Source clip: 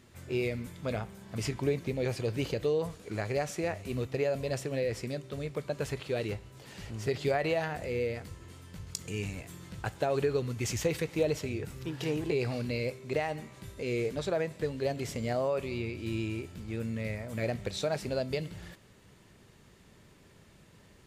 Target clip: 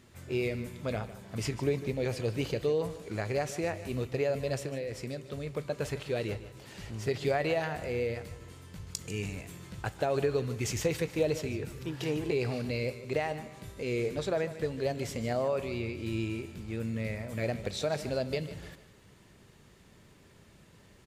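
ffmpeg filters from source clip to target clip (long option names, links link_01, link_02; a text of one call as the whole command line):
ffmpeg -i in.wav -filter_complex "[0:a]asettb=1/sr,asplit=3[link_01][link_02][link_03];[link_01]atrim=end=4.554[link_04];[link_02]atrim=start=4.55:end=5.47,asetpts=PTS-STARTPTS,afade=type=in:duration=0.004:curve=qsin,afade=type=out:start_time=0.916:duration=0.004:curve=qsin,acompressor=threshold=-33dB:ratio=6[link_05];[link_03]atrim=start=5.466[link_06];[link_04][link_05]acrossfade=duration=0.004:curve1=hsin:curve2=qsin[link_07];[link_07][link_06]acrossfade=duration=0.004:curve1=qsin:curve2=hsin,aecho=1:1:151|302|453|604:0.188|0.0716|0.0272|0.0103" out.wav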